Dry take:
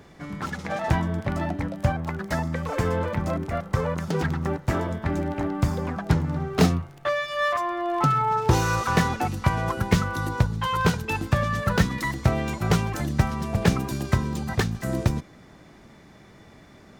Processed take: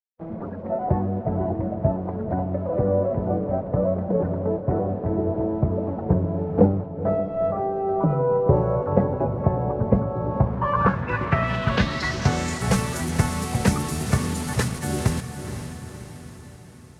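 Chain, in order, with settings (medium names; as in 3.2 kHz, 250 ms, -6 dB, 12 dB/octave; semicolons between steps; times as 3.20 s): dynamic bell 3.5 kHz, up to -5 dB, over -50 dBFS, Q 3.4; bit crusher 6-bit; formant-preserving pitch shift +2 st; low-pass sweep 580 Hz -> 10 kHz, 10.11–12.75 s; echo that smears into a reverb 510 ms, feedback 53%, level -9 dB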